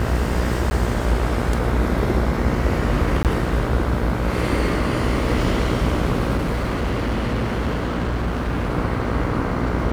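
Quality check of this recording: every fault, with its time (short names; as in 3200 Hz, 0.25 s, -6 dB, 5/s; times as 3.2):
buzz 60 Hz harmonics 27 -25 dBFS
0.7–0.71 gap 10 ms
3.23–3.25 gap 18 ms
6.36–8.7 clipped -18 dBFS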